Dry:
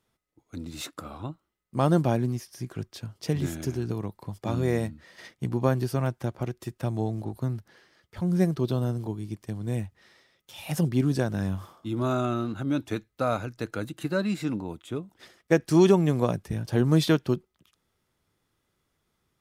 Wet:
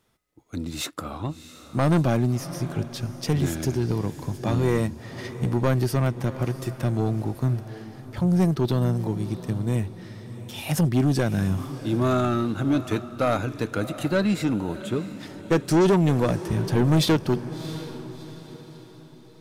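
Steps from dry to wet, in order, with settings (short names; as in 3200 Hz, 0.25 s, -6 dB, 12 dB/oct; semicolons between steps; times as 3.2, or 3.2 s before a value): soft clip -21 dBFS, distortion -9 dB; diffused feedback echo 0.682 s, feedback 43%, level -13.5 dB; gain +6.5 dB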